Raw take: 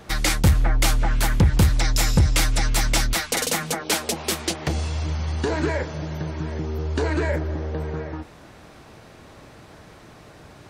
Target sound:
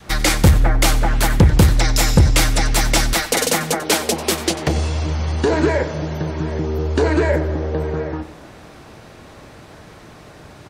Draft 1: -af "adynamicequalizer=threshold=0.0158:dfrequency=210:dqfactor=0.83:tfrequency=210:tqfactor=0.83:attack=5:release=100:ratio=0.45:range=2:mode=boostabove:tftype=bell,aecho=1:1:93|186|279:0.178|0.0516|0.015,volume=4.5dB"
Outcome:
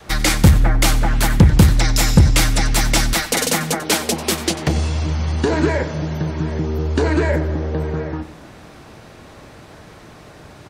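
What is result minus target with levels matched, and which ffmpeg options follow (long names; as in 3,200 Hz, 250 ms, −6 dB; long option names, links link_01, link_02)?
500 Hz band −2.5 dB
-af "adynamicequalizer=threshold=0.0158:dfrequency=450:dqfactor=0.83:tfrequency=450:tqfactor=0.83:attack=5:release=100:ratio=0.45:range=2:mode=boostabove:tftype=bell,aecho=1:1:93|186|279:0.178|0.0516|0.015,volume=4.5dB"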